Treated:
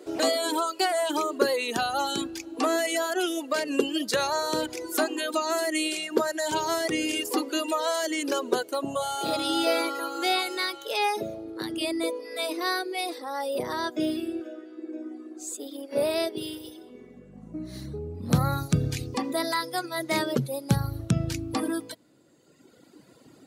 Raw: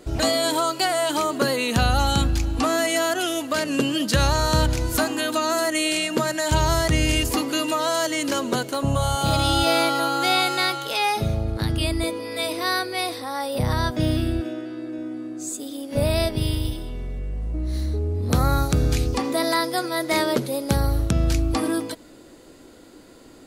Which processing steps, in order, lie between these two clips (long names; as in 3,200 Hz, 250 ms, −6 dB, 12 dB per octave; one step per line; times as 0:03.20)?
reverb reduction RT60 1.9 s
high-pass filter sweep 370 Hz → 130 Hz, 0:16.65–0:17.99
level −4 dB